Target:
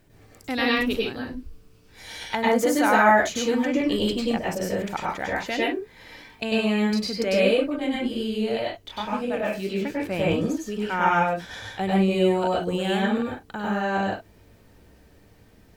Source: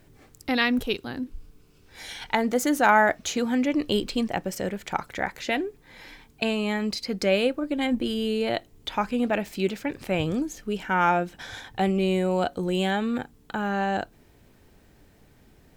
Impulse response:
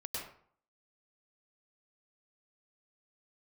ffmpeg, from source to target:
-filter_complex "[0:a]asettb=1/sr,asplit=3[link_01][link_02][link_03];[link_01]atrim=end=7.644[link_04];[link_02]atrim=start=7.64:end=9.84,asetpts=PTS-STARTPTS,afade=type=in:duration=0.004:curve=qsin,afade=type=out:start_time=2.196:duration=0.004:curve=qsin,flanger=delay=19:depth=7.2:speed=1.9[link_05];[link_03]atrim=start=9.836[link_06];[link_04][link_05]acrossfade=duration=0.004:curve1=hsin:curve2=qsin[link_07];[link_07][link_06]acrossfade=duration=0.004:curve1=qsin:curve2=hsin[link_08];[1:a]atrim=start_sample=2205,afade=type=out:start_time=0.22:duration=0.01,atrim=end_sample=10143[link_09];[link_08][link_09]afir=irnorm=-1:irlink=0,volume=2dB"

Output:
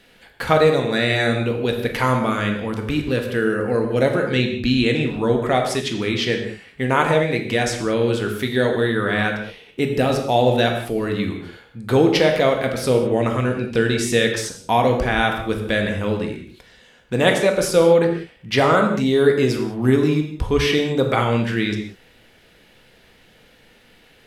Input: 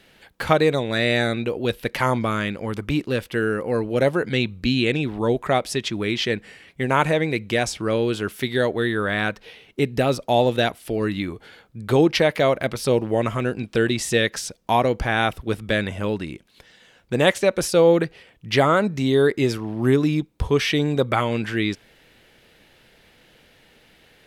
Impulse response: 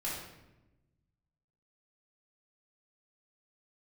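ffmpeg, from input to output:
-filter_complex "[0:a]asplit=2[link_01][link_02];[1:a]atrim=start_sample=2205,atrim=end_sample=6615,asetrate=30429,aresample=44100[link_03];[link_02][link_03]afir=irnorm=-1:irlink=0,volume=-5dB[link_04];[link_01][link_04]amix=inputs=2:normalize=0,volume=-2.5dB"

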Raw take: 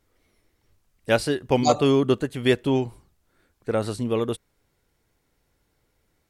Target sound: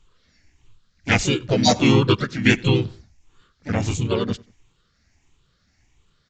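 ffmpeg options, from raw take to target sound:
ffmpeg -i in.wav -filter_complex "[0:a]afftfilt=real='re*pow(10,15/40*sin(2*PI*(0.66*log(max(b,1)*sr/1024/100)/log(2)-(1.5)*(pts-256)/sr)))':imag='im*pow(10,15/40*sin(2*PI*(0.66*log(max(b,1)*sr/1024/100)/log(2)-(1.5)*(pts-256)/sr)))':win_size=1024:overlap=0.75,equalizer=frequency=550:width=0.64:gain=-13,asplit=4[link_01][link_02][link_03][link_04];[link_02]asetrate=35002,aresample=44100,atempo=1.25992,volume=-9dB[link_05];[link_03]asetrate=37084,aresample=44100,atempo=1.18921,volume=-2dB[link_06];[link_04]asetrate=55563,aresample=44100,atempo=0.793701,volume=-8dB[link_07];[link_01][link_05][link_06][link_07]amix=inputs=4:normalize=0,asplit=2[link_08][link_09];[link_09]adelay=93,lowpass=frequency=3400:poles=1,volume=-24dB,asplit=2[link_10][link_11];[link_11]adelay=93,lowpass=frequency=3400:poles=1,volume=0.39[link_12];[link_10][link_12]amix=inputs=2:normalize=0[link_13];[link_08][link_13]amix=inputs=2:normalize=0,aresample=16000,aresample=44100,volume=4.5dB" out.wav

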